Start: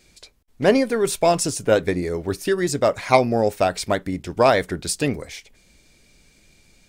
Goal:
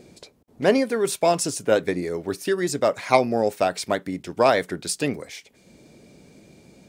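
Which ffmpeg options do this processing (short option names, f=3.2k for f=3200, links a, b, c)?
-filter_complex "[0:a]highpass=150,acrossover=split=810|3100[a][b][c];[a]acompressor=mode=upward:threshold=-34dB:ratio=2.5[d];[d][b][c]amix=inputs=3:normalize=0,volume=-2dB"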